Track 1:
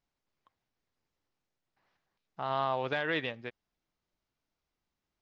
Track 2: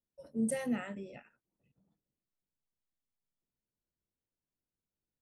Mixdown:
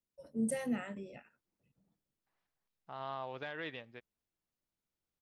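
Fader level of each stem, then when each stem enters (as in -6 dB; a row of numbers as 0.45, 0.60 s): -10.5, -1.5 dB; 0.50, 0.00 s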